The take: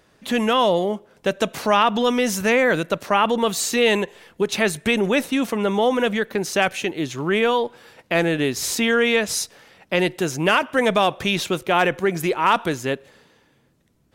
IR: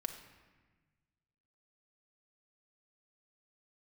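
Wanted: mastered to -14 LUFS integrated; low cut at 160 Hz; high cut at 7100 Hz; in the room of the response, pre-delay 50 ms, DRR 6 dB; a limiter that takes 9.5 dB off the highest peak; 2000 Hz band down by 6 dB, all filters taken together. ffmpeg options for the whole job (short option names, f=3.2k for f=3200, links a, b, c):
-filter_complex "[0:a]highpass=160,lowpass=7.1k,equalizer=f=2k:t=o:g=-8,alimiter=limit=-15.5dB:level=0:latency=1,asplit=2[a][b];[1:a]atrim=start_sample=2205,adelay=50[c];[b][c]afir=irnorm=-1:irlink=0,volume=-5.5dB[d];[a][d]amix=inputs=2:normalize=0,volume=11dB"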